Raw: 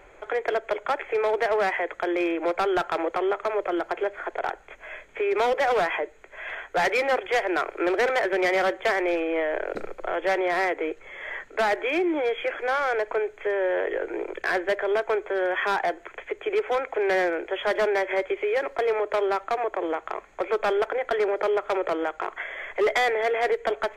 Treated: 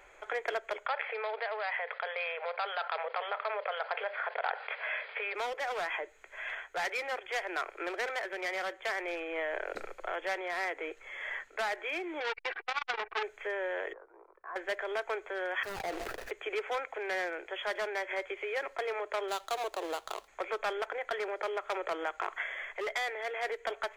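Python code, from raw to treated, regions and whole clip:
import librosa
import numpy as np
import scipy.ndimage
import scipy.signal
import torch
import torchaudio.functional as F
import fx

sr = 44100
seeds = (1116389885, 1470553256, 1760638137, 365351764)

y = fx.chain(x, sr, fx.brickwall_bandpass(low_hz=420.0, high_hz=5000.0),
    fx.env_flatten(amount_pct=50), at=(0.86, 5.35))
y = fx.chain(y, sr, fx.comb(ms=2.6, depth=0.92),
    fx.resample_bad(factor=8, down='none', up='filtered'),
    fx.transformer_sat(knee_hz=2200.0), at=(12.2, 13.23))
y = fx.chain(y, sr, fx.ladder_lowpass(hz=1200.0, resonance_pct=70),
    fx.upward_expand(threshold_db=-43.0, expansion=1.5), at=(13.93, 14.56))
y = fx.chain(y, sr, fx.median_filter(points=41),
    fx.sustainer(db_per_s=28.0), at=(15.63, 16.31))
y = fx.chain(y, sr, fx.median_filter(points=25),
    fx.high_shelf(hz=4700.0, db=8.0), at=(19.28, 20.28))
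y = fx.peak_eq(y, sr, hz=290.0, db=-8.5, octaves=2.7)
y = fx.rider(y, sr, range_db=4, speed_s=0.5)
y = fx.bass_treble(y, sr, bass_db=-8, treble_db=2)
y = y * librosa.db_to_amplitude(-5.5)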